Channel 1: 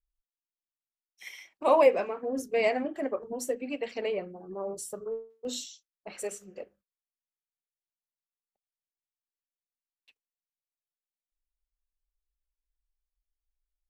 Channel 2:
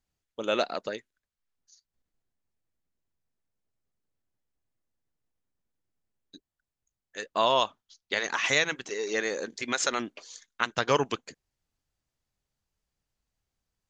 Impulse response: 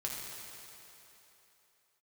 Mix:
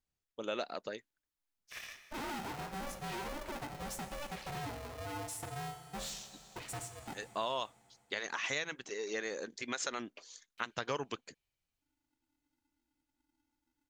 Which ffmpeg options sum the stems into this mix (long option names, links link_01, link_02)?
-filter_complex "[0:a]acompressor=threshold=-34dB:ratio=2,asoftclip=type=hard:threshold=-38dB,aeval=exprs='val(0)*sgn(sin(2*PI*290*n/s))':channel_layout=same,adelay=500,volume=-4dB,asplit=2[link_01][link_02];[link_02]volume=-6.5dB[link_03];[1:a]acompressor=threshold=-27dB:ratio=2.5,volume=-7dB[link_04];[2:a]atrim=start_sample=2205[link_05];[link_03][link_05]afir=irnorm=-1:irlink=0[link_06];[link_01][link_04][link_06]amix=inputs=3:normalize=0"